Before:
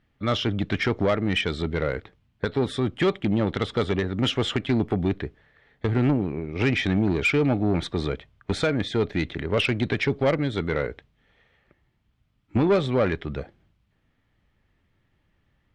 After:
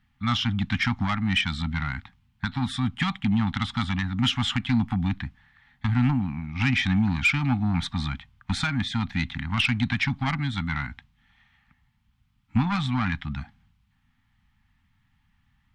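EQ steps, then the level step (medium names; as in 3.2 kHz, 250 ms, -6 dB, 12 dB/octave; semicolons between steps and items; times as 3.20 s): elliptic band-stop 250–810 Hz, stop band 50 dB; +2.0 dB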